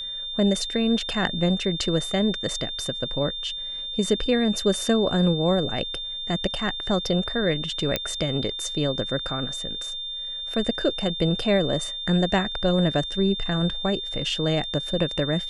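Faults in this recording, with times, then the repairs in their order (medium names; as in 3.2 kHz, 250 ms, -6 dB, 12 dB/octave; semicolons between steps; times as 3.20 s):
whine 3.6 kHz -30 dBFS
7.96 s: pop -8 dBFS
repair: de-click; band-stop 3.6 kHz, Q 30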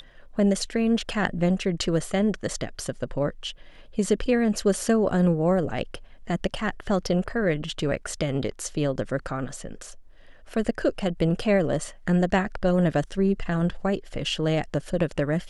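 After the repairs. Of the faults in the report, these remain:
nothing left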